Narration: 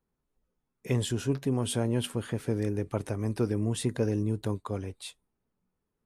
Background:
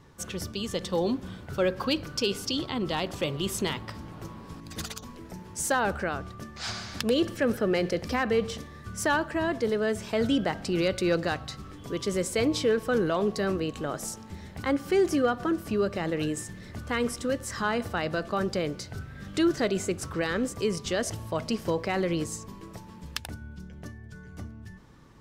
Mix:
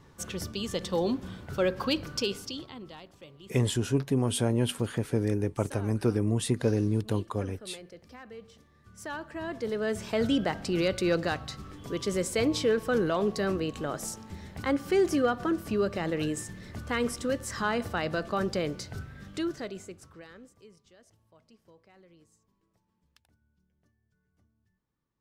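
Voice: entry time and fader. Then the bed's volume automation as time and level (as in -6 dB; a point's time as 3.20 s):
2.65 s, +2.0 dB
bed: 2.17 s -1 dB
3.12 s -20.5 dB
8.50 s -20.5 dB
10.00 s -1 dB
19.00 s -1 dB
20.93 s -30.5 dB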